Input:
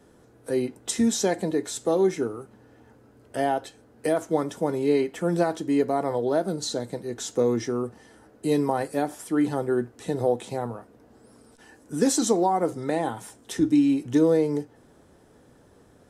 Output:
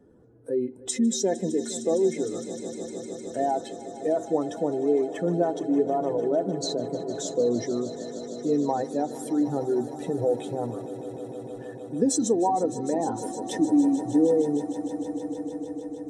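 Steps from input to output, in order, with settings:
expanding power law on the bin magnitudes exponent 1.7
echo that builds up and dies away 153 ms, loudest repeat 5, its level −17 dB
level −1 dB

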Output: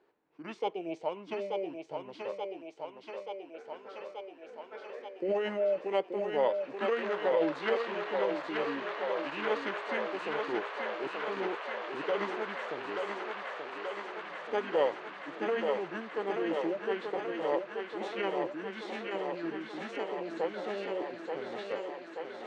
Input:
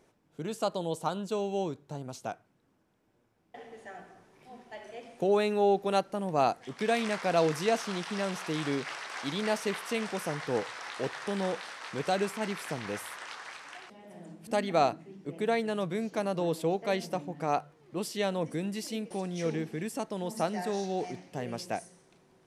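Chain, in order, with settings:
three-way crossover with the lows and the highs turned down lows −20 dB, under 380 Hz, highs −23 dB, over 4,500 Hz
formants moved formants −5 semitones
feedback echo with a high-pass in the loop 881 ms, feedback 82%, high-pass 280 Hz, level −4 dB
level −1 dB

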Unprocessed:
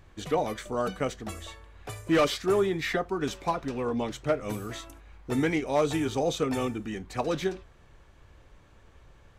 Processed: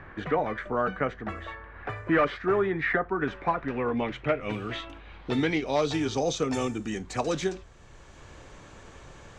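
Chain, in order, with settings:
low-pass filter sweep 1,700 Hz → 7,200 Hz, 0:03.49–0:06.74
multiband upward and downward compressor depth 40%

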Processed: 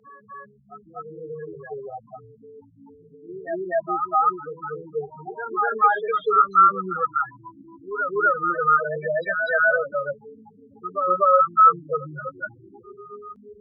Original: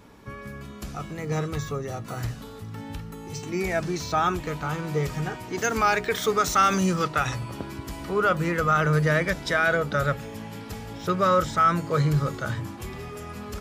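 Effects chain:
variable-slope delta modulation 32 kbit/s
spectral peaks only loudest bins 4
band-pass filter 600–2,800 Hz
backwards echo 246 ms −6.5 dB
level +8 dB

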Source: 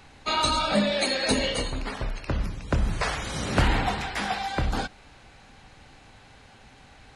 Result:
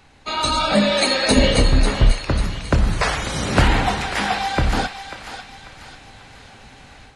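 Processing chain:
feedback echo with a high-pass in the loop 543 ms, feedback 45%, high-pass 880 Hz, level −9 dB
automatic gain control gain up to 8.5 dB
0:01.36–0:02.12: low-shelf EQ 360 Hz +11 dB
level −1 dB

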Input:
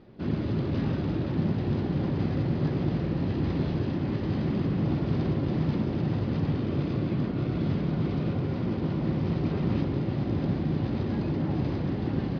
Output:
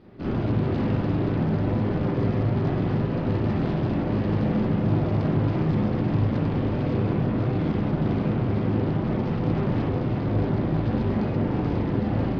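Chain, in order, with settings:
tube saturation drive 30 dB, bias 0.7
convolution reverb, pre-delay 38 ms, DRR −4 dB
level +4 dB

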